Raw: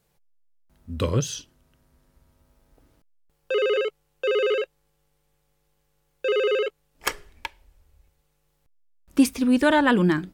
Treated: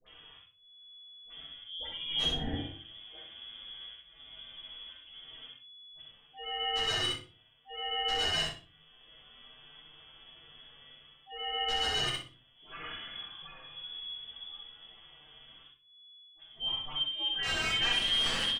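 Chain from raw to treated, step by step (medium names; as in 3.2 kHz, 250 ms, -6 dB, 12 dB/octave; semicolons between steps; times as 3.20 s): reverse; compression 6:1, threshold -34 dBFS, peak gain reduction 20 dB; reverse; frequency inversion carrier 3.4 kHz; slow attack 260 ms; time stretch by phase-locked vocoder 1.8×; phase dispersion highs, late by 71 ms, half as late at 1 kHz; integer overflow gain 29.5 dB; distance through air 120 m; on a send: feedback delay 63 ms, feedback 19%, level -3 dB; on the sum: simulated room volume 120 m³, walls furnished, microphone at 3.7 m; three bands compressed up and down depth 40%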